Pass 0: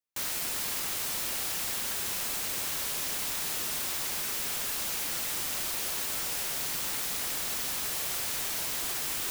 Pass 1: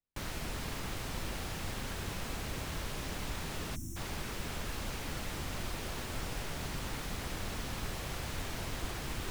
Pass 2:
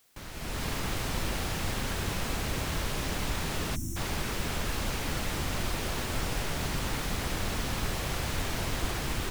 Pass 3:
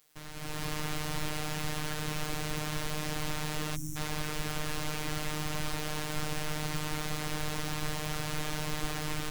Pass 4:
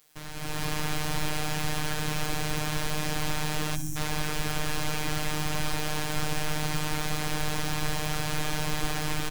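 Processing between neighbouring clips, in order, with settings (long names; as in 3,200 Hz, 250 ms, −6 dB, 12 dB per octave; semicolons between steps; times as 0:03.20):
RIAA equalisation playback; gain on a spectral selection 0:03.76–0:03.97, 360–5,400 Hz −28 dB; level −2 dB
automatic gain control gain up to 12 dB; bit-depth reduction 10 bits, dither triangular; level −5 dB
phases set to zero 152 Hz
repeating echo 67 ms, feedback 50%, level −14.5 dB; level +4.5 dB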